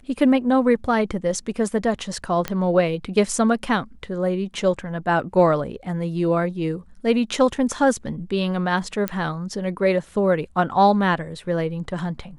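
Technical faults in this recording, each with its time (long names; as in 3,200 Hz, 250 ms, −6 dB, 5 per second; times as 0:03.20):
0:02.48: click −9 dBFS
0:09.08: click −8 dBFS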